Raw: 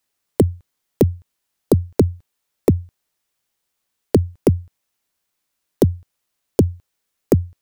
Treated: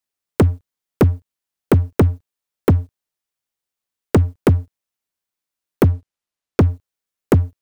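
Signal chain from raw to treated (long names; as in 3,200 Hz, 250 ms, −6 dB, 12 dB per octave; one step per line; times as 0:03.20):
0:05.85–0:06.61: high-shelf EQ 12,000 Hz −12 dB
leveller curve on the samples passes 3
level −4 dB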